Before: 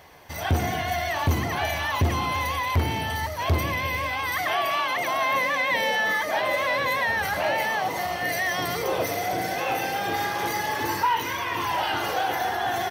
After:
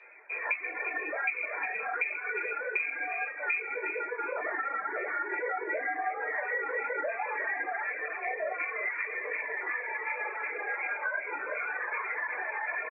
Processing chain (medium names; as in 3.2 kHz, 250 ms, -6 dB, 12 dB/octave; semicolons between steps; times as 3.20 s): chorus 2.8 Hz, delay 16 ms, depth 3.5 ms; frequency inversion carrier 2.5 kHz; distance through air 220 m; reverberation RT60 0.40 s, pre-delay 3 ms, DRR 0 dB; reverb removal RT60 1.3 s; high-pass 440 Hz 24 dB/octave; delay 357 ms -13 dB; compression 4:1, threshold -22 dBFS, peak gain reduction 11 dB; trim -7.5 dB